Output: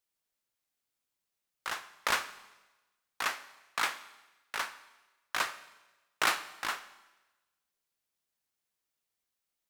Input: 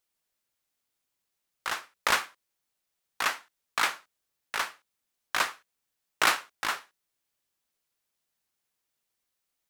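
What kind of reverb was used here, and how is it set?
Schroeder reverb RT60 1.1 s, combs from 30 ms, DRR 13.5 dB; gain -4.5 dB

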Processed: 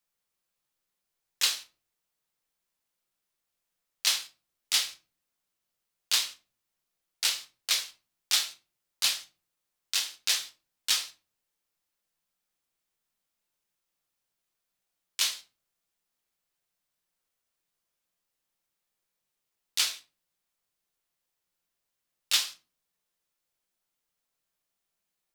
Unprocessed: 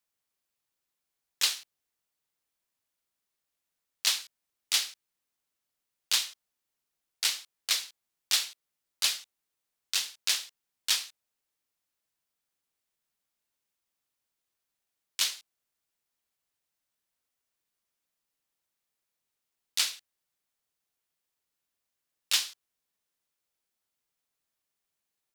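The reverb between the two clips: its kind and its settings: shoebox room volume 180 m³, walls furnished, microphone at 0.89 m

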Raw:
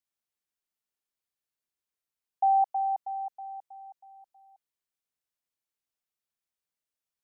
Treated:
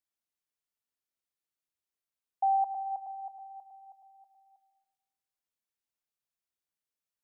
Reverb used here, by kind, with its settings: plate-style reverb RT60 1.1 s, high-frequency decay 0.3×, pre-delay 0.115 s, DRR 13.5 dB; gain -3.5 dB

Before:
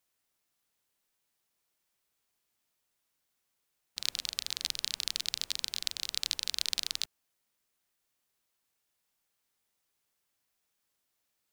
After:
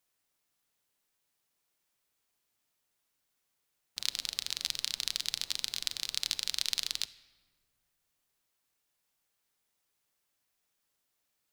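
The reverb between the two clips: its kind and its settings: shoebox room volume 1600 m³, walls mixed, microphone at 0.33 m

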